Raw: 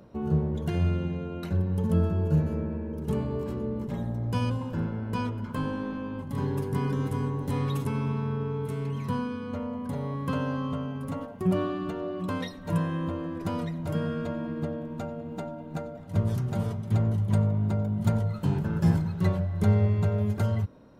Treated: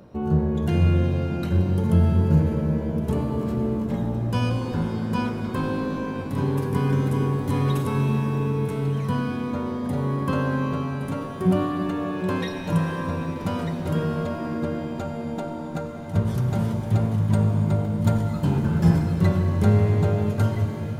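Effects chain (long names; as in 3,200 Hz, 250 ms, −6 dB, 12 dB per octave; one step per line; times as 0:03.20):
reverb with rising layers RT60 3.8 s, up +7 semitones, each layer −8 dB, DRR 5 dB
level +4 dB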